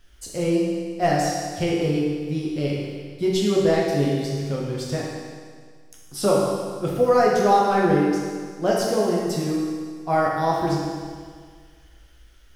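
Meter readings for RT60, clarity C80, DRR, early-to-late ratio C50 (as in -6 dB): 1.8 s, 1.5 dB, -4.5 dB, -0.5 dB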